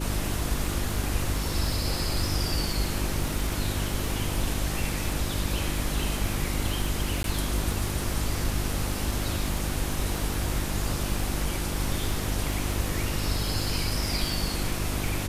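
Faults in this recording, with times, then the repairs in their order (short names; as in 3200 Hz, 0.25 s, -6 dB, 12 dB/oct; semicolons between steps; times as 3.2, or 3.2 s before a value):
crackle 31/s -31 dBFS
hum 50 Hz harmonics 7 -32 dBFS
7.23–7.24 gap 12 ms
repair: de-click; de-hum 50 Hz, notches 7; interpolate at 7.23, 12 ms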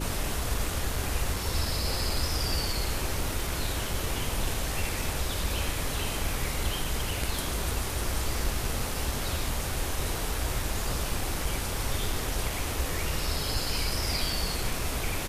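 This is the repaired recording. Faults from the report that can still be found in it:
none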